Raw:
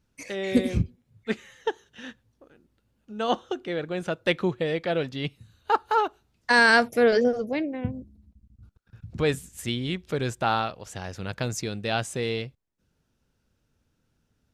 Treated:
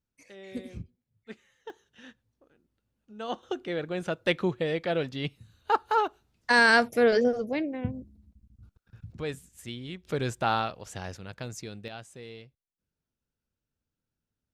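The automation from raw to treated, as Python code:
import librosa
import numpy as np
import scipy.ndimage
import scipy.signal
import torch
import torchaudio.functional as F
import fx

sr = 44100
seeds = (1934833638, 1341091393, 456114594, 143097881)

y = fx.gain(x, sr, db=fx.steps((0.0, -16.0), (1.7, -9.0), (3.43, -2.0), (9.12, -10.0), (10.05, -2.0), (11.17, -9.0), (11.88, -16.0)))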